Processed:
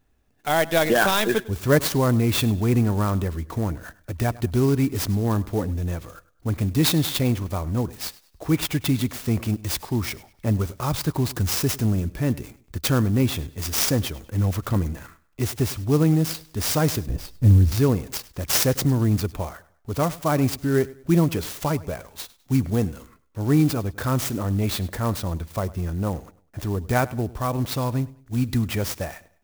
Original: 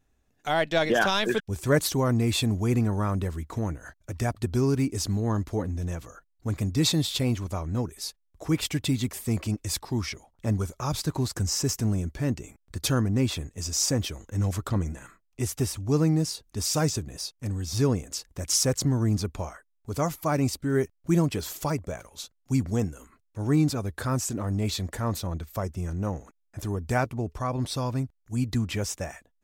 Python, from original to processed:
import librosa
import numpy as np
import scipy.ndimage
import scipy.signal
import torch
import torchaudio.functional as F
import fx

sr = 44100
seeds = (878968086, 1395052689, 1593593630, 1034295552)

y = fx.tilt_eq(x, sr, slope=-4.0, at=(17.09, 17.72))
y = fx.echo_feedback(y, sr, ms=101, feedback_pct=33, wet_db=-20)
y = fx.clock_jitter(y, sr, seeds[0], jitter_ms=0.033)
y = y * 10.0 ** (4.0 / 20.0)